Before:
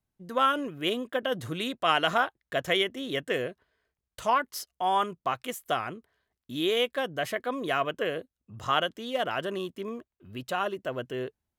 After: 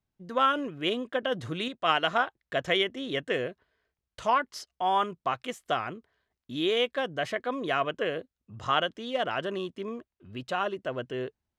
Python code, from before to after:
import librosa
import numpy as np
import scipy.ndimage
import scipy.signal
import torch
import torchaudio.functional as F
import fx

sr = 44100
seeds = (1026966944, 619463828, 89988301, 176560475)

y = scipy.signal.sosfilt(scipy.signal.butter(2, 6100.0, 'lowpass', fs=sr, output='sos'), x)
y = fx.upward_expand(y, sr, threshold_db=-32.0, expansion=1.5, at=(1.68, 2.27))